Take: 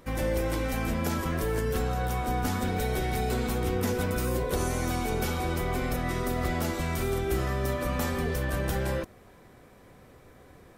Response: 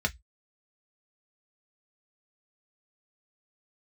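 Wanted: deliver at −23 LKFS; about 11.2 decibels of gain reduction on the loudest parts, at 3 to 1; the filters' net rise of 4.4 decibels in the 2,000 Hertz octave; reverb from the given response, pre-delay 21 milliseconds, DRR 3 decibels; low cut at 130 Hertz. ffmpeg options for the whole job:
-filter_complex "[0:a]highpass=130,equalizer=frequency=2000:width_type=o:gain=5.5,acompressor=threshold=-41dB:ratio=3,asplit=2[link_01][link_02];[1:a]atrim=start_sample=2205,adelay=21[link_03];[link_02][link_03]afir=irnorm=-1:irlink=0,volume=-11dB[link_04];[link_01][link_04]amix=inputs=2:normalize=0,volume=15dB"

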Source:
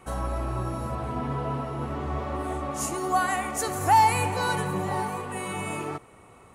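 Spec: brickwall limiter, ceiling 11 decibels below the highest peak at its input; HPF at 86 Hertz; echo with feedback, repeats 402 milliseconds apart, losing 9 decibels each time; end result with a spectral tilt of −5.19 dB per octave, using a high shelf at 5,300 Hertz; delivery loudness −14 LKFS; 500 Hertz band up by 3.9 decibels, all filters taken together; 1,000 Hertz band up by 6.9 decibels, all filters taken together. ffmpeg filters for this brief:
ffmpeg -i in.wav -af "highpass=86,equalizer=frequency=500:width_type=o:gain=3,equalizer=frequency=1000:width_type=o:gain=7.5,highshelf=frequency=5300:gain=-5.5,alimiter=limit=-15dB:level=0:latency=1,aecho=1:1:402|804|1206|1608:0.355|0.124|0.0435|0.0152,volume=11.5dB" out.wav

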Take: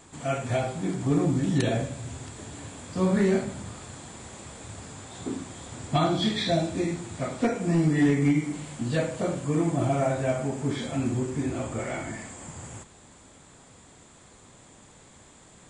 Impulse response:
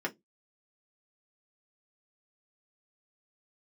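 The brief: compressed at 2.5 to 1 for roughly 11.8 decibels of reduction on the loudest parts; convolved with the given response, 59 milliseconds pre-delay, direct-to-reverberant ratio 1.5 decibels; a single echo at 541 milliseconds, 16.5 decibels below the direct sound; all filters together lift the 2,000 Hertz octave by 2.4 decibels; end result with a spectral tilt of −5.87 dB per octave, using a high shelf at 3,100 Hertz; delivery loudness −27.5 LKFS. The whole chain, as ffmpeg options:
-filter_complex "[0:a]equalizer=frequency=2000:width_type=o:gain=4,highshelf=frequency=3100:gain=-3.5,acompressor=threshold=-37dB:ratio=2.5,aecho=1:1:541:0.15,asplit=2[link_01][link_02];[1:a]atrim=start_sample=2205,adelay=59[link_03];[link_02][link_03]afir=irnorm=-1:irlink=0,volume=-7dB[link_04];[link_01][link_04]amix=inputs=2:normalize=0,volume=7dB"

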